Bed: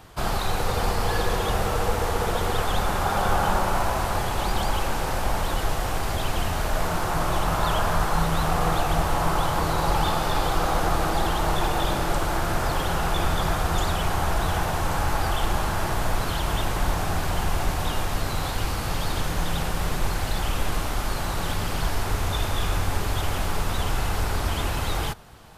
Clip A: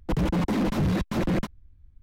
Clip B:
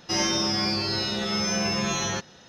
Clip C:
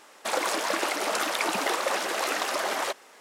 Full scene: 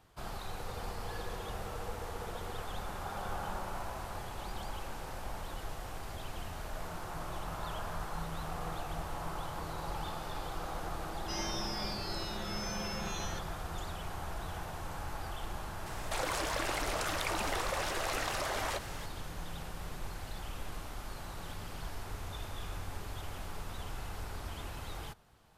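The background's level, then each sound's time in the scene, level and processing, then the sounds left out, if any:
bed −16.5 dB
0:11.19: mix in B −14.5 dB
0:15.86: mix in C −9.5 dB + envelope flattener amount 50%
not used: A

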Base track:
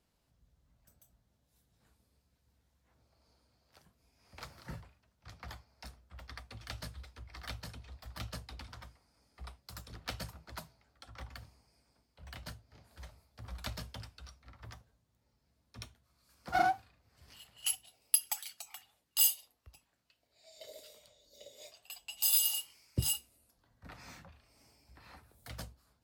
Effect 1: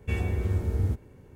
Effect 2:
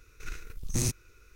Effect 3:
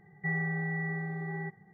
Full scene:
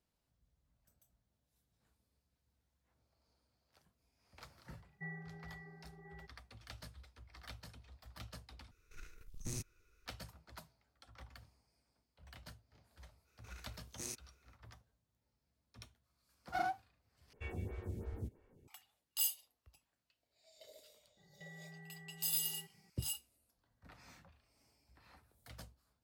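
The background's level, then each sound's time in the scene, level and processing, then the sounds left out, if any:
base track −8 dB
0:04.77: mix in 3 −13.5 dB + reverb reduction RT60 1.3 s
0:08.71: overwrite with 2 −14 dB
0:13.24: mix in 2 −12.5 dB, fades 0.05 s + high-pass filter 340 Hz
0:17.33: overwrite with 1 −10.5 dB + phaser with staggered stages 3 Hz
0:21.17: mix in 3 −11 dB + downward compressor 2 to 1, threshold −49 dBFS

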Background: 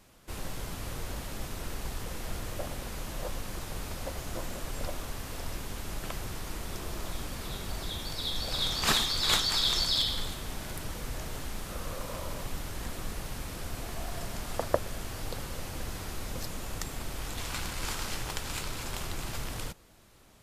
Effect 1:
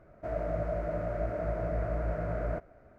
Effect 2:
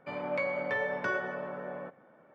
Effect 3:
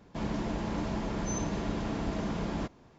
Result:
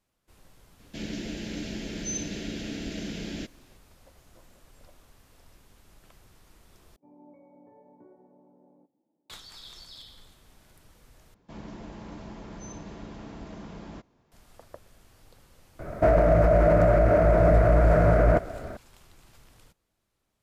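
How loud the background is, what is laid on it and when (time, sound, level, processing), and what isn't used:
background −19.5 dB
0:00.79: mix in 3 −5.5 dB + drawn EQ curve 140 Hz 0 dB, 280 Hz +6 dB, 600 Hz 0 dB, 1,100 Hz −17 dB, 1,500 Hz +3 dB, 2,800 Hz +12 dB
0:06.96: overwrite with 2 −7 dB + formant resonators in series u
0:11.34: overwrite with 3 −9 dB
0:15.79: mix in 1 −10.5 dB + boost into a limiter +30 dB

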